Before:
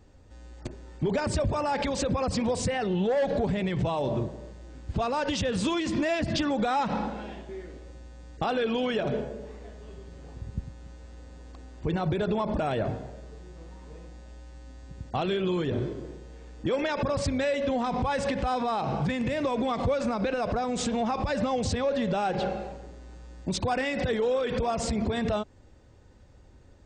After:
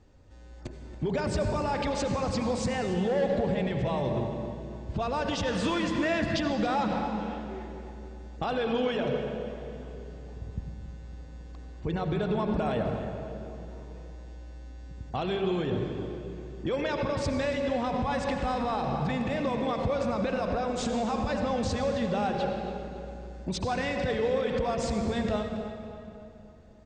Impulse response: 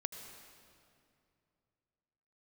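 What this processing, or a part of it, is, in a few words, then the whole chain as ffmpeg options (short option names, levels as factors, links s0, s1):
stairwell: -filter_complex "[1:a]atrim=start_sample=2205[s0];[0:a][s0]afir=irnorm=-1:irlink=0,lowpass=7500,asettb=1/sr,asplit=3[s1][s2][s3];[s1]atrim=end=5.474[s4];[s2]atrim=start=5.47:end=6.37,asetpts=PTS-STARTPTS,afade=t=in:d=0.004:c=qsin,afade=t=out:st=0.896:d=0.004:c=qsin,equalizer=f=1500:t=o:w=1.1:g=6[s5];[s3]atrim=start=6.366[s6];[s4][s5]acrossfade=d=0.004:c1=hsin:c2=qsin[s7];[s7][s6]acrossfade=d=0.004:c1=qsin:c2=hsin,asplit=2[s8][s9];[s9]adelay=277,lowpass=f=3900:p=1,volume=0.237,asplit=2[s10][s11];[s11]adelay=277,lowpass=f=3900:p=1,volume=0.51,asplit=2[s12][s13];[s13]adelay=277,lowpass=f=3900:p=1,volume=0.51,asplit=2[s14][s15];[s15]adelay=277,lowpass=f=3900:p=1,volume=0.51,asplit=2[s16][s17];[s17]adelay=277,lowpass=f=3900:p=1,volume=0.51[s18];[s8][s10][s12][s14][s16][s18]amix=inputs=6:normalize=0,volume=0.891"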